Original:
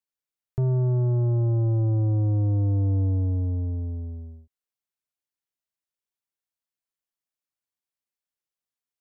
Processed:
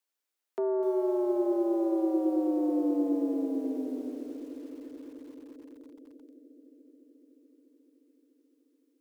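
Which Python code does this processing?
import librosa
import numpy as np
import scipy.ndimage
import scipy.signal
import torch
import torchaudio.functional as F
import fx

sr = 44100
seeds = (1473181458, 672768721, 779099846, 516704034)

y = scipy.signal.sosfilt(scipy.signal.butter(12, 250.0, 'highpass', fs=sr, output='sos'), x)
y = fx.echo_bbd(y, sr, ms=215, stages=1024, feedback_pct=85, wet_db=-13.0)
y = fx.echo_crushed(y, sr, ms=249, feedback_pct=35, bits=9, wet_db=-13.0)
y = F.gain(torch.from_numpy(y), 5.5).numpy()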